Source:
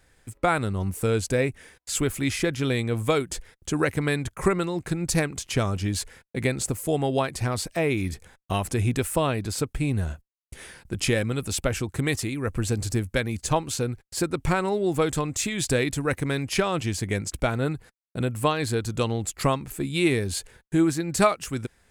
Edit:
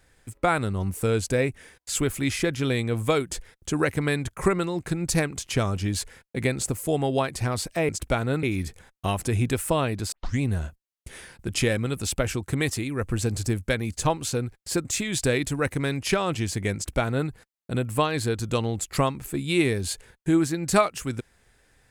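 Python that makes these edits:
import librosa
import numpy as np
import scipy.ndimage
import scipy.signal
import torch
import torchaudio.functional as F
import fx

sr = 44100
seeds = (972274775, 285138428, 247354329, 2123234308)

y = fx.edit(x, sr, fx.tape_start(start_s=9.58, length_s=0.29),
    fx.cut(start_s=14.31, length_s=1.0),
    fx.duplicate(start_s=17.21, length_s=0.54, to_s=7.89), tone=tone)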